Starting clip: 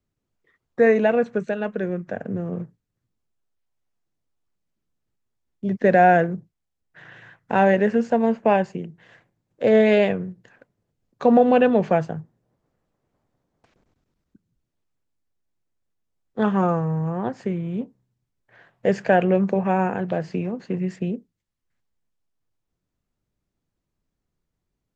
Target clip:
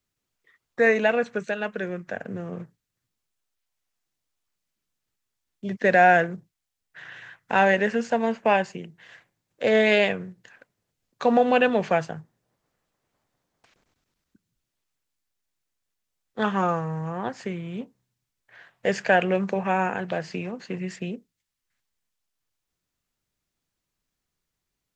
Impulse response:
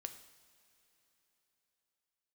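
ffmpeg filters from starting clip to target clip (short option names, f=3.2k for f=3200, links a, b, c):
-af "tiltshelf=f=970:g=-7"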